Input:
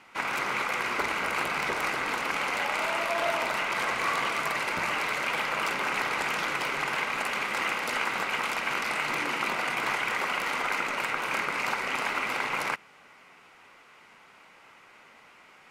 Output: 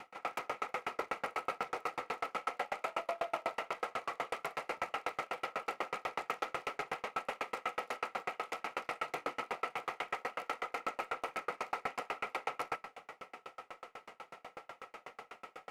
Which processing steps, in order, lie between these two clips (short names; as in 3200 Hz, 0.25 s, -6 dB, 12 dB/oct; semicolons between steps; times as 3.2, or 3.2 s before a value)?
notch 1500 Hz, Q 6.3; reverse; compressor, threshold -37 dBFS, peak gain reduction 12.5 dB; reverse; limiter -34 dBFS, peak gain reduction 9 dB; small resonant body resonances 500/730/1300 Hz, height 12 dB, ringing for 20 ms; on a send at -6 dB: reverb RT60 0.55 s, pre-delay 15 ms; on the sum: dB-ramp tremolo decaying 8.1 Hz, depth 38 dB; gain +6 dB